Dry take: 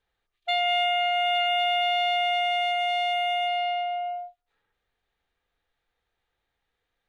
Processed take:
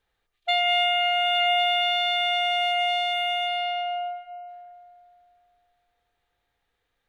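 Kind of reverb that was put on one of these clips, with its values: FDN reverb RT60 2.5 s, high-frequency decay 0.5×, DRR 14 dB; gain +3 dB

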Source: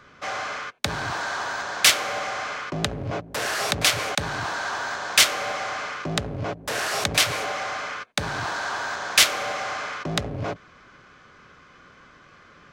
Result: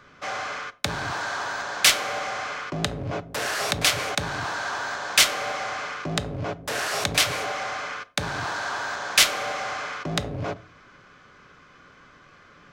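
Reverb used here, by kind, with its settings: shoebox room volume 360 m³, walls furnished, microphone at 0.32 m; gain -1 dB

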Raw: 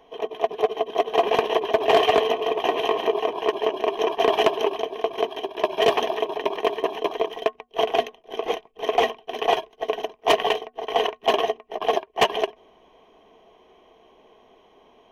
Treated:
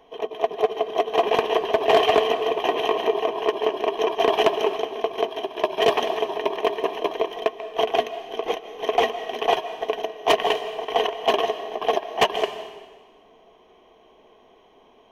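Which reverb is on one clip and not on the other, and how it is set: digital reverb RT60 1.3 s, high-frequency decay 1×, pre-delay 0.11 s, DRR 11.5 dB

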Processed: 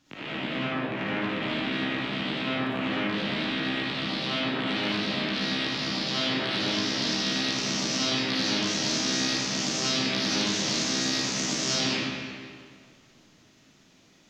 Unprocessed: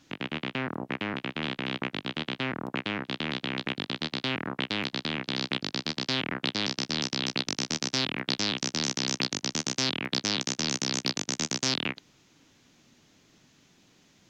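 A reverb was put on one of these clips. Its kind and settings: digital reverb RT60 2 s, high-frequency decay 0.8×, pre-delay 15 ms, DRR -10 dB; gain -7 dB

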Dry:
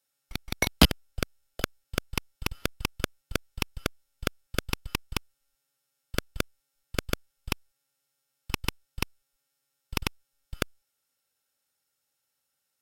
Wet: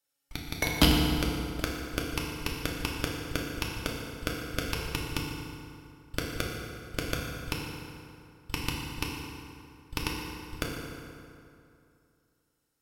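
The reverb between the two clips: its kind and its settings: FDN reverb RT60 2.6 s, high-frequency decay 0.65×, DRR -2.5 dB; gain -4.5 dB

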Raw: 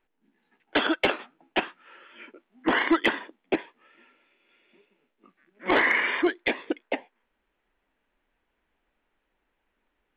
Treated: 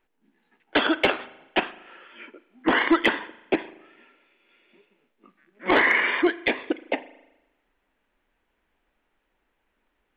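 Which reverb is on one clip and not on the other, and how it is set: spring tank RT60 1 s, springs 38 ms, chirp 70 ms, DRR 16.5 dB; gain +2.5 dB

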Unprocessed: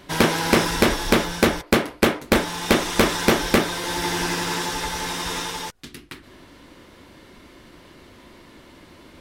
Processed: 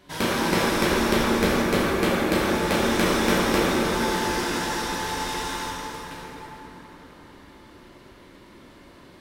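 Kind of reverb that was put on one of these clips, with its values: plate-style reverb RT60 4.7 s, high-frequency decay 0.5×, DRR -7 dB; gain -9.5 dB

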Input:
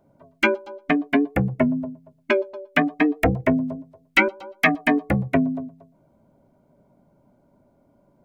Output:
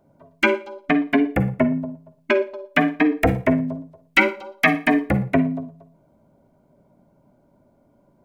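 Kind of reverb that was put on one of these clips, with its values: Schroeder reverb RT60 0.33 s, DRR 11 dB; gain +1 dB

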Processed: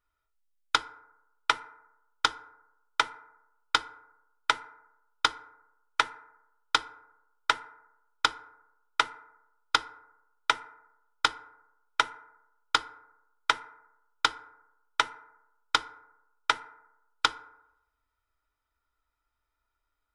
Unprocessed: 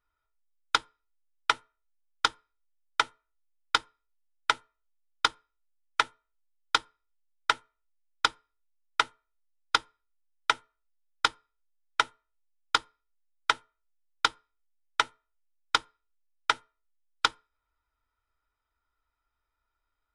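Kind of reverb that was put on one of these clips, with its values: FDN reverb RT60 0.91 s, low-frequency decay 0.85×, high-frequency decay 0.35×, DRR 14.5 dB

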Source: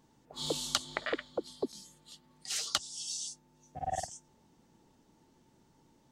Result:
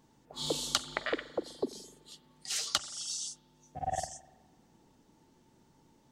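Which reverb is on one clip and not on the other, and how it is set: spring tank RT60 1.2 s, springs 42 ms, chirp 75 ms, DRR 15.5 dB; gain +1 dB

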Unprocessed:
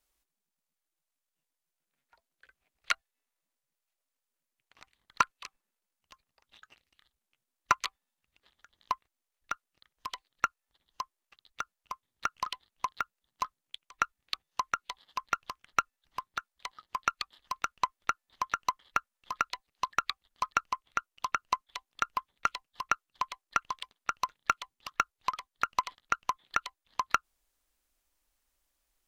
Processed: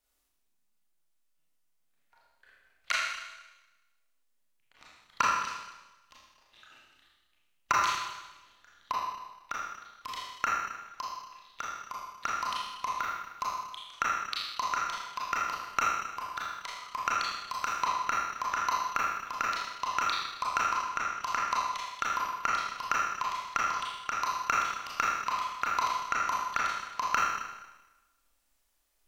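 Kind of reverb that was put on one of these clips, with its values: Schroeder reverb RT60 1.1 s, combs from 26 ms, DRR -5.5 dB; gain -3 dB

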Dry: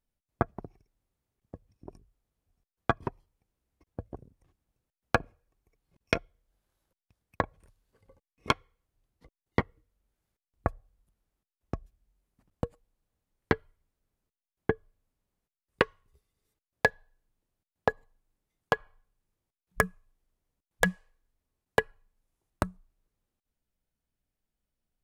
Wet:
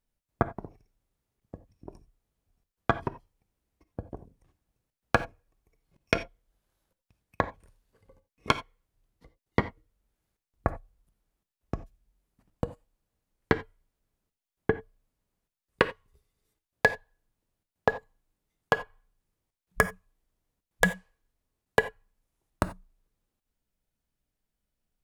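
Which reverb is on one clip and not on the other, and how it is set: non-linear reverb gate 0.11 s flat, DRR 11.5 dB; gain +1.5 dB

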